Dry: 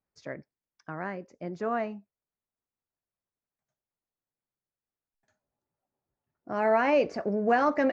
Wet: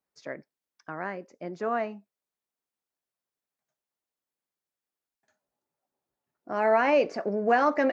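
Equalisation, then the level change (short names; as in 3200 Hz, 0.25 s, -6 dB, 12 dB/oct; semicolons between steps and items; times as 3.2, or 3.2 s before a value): HPF 55 Hz; bell 90 Hz -12.5 dB 1.7 oct; +2.0 dB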